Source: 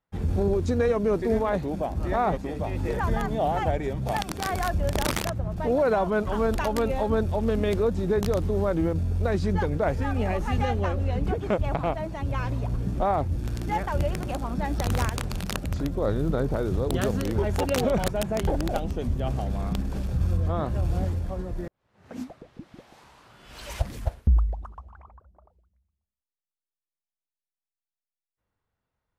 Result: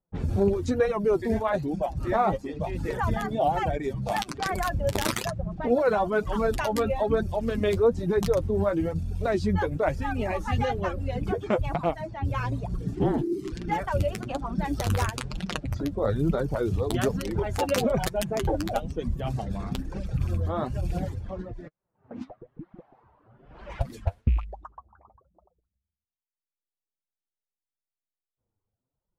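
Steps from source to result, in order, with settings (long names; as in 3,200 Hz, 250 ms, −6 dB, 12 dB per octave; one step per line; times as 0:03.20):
loose part that buzzes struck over −18 dBFS, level −35 dBFS
reverb reduction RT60 1.2 s
low-pass that shuts in the quiet parts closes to 650 Hz, open at −25.5 dBFS
0:21.50–0:22.21: downward compressor 5 to 1, threshold −36 dBFS, peak gain reduction 7.5 dB
flanger 1.1 Hz, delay 5 ms, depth 5.4 ms, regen +30%
0:12.95–0:13.52: frequency shifter −430 Hz
level +5 dB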